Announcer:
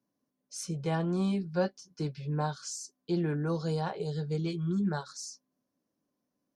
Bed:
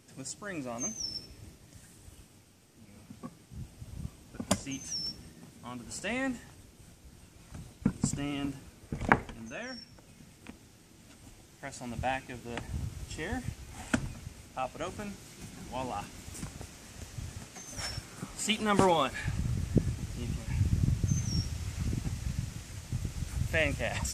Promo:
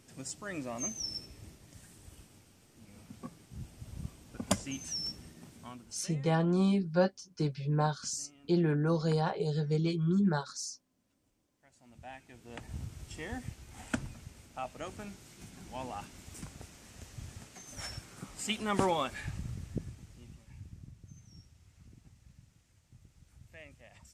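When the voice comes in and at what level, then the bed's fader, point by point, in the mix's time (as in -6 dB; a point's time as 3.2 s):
5.40 s, +2.0 dB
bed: 5.61 s -1 dB
6.28 s -25 dB
11.56 s -25 dB
12.72 s -4.5 dB
19.18 s -4.5 dB
20.94 s -23.5 dB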